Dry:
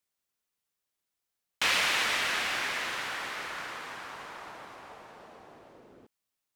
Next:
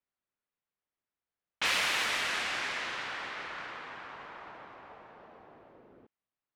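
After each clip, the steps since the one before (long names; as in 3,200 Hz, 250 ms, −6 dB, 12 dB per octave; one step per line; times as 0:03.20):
low-pass that shuts in the quiet parts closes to 2,200 Hz, open at −24 dBFS
level −2.5 dB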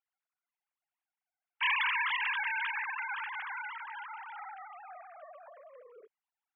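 three sine waves on the formant tracks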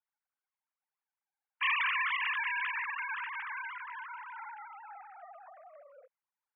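single-sideband voice off tune +80 Hz 430–2,900 Hz
low-pass that shuts in the quiet parts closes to 2,000 Hz, open at −28 dBFS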